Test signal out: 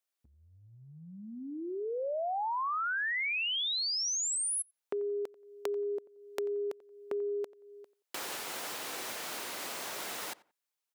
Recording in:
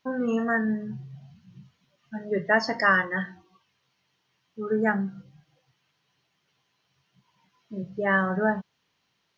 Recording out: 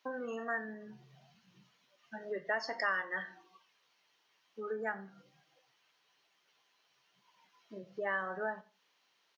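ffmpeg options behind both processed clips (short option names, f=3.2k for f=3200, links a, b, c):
-filter_complex "[0:a]acompressor=threshold=-36dB:ratio=2.5,highpass=430,asplit=2[a][b];[b]adelay=89,lowpass=f=2.2k:p=1,volume=-19.5dB,asplit=2[c][d];[d]adelay=89,lowpass=f=2.2k:p=1,volume=0.26[e];[c][e]amix=inputs=2:normalize=0[f];[a][f]amix=inputs=2:normalize=0"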